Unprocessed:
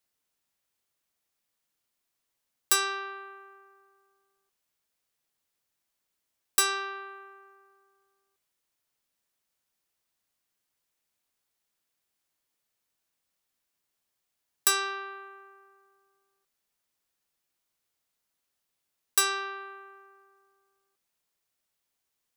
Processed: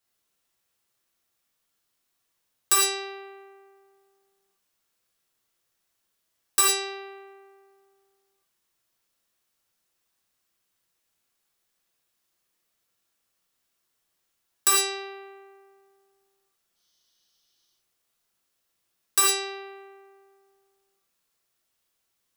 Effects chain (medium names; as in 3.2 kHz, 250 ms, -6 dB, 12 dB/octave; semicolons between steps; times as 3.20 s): time-frequency box 16.76–17.71 s, 2.9–6.5 kHz +12 dB; gated-style reverb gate 130 ms flat, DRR -3.5 dB